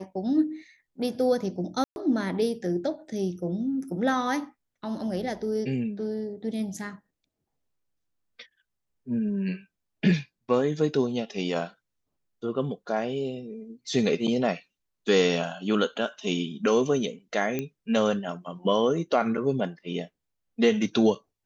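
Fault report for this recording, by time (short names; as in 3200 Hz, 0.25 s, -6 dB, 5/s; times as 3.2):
1.84–1.96 gap 0.121 s
17.59 pop -16 dBFS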